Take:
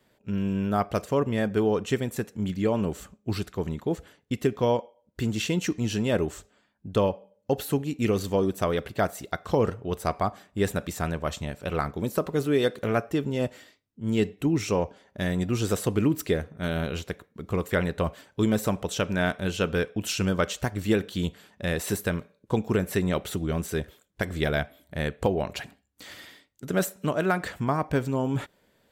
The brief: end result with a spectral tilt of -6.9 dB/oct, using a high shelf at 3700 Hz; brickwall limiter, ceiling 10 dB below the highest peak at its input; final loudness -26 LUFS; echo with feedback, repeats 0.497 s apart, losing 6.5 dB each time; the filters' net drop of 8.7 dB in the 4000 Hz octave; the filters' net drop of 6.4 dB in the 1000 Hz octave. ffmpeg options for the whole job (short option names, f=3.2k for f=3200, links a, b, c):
-af "equalizer=f=1k:t=o:g=-8.5,highshelf=f=3.7k:g=-5,equalizer=f=4k:t=o:g=-8,alimiter=limit=-21.5dB:level=0:latency=1,aecho=1:1:497|994|1491|1988|2485|2982:0.473|0.222|0.105|0.0491|0.0231|0.0109,volume=7dB"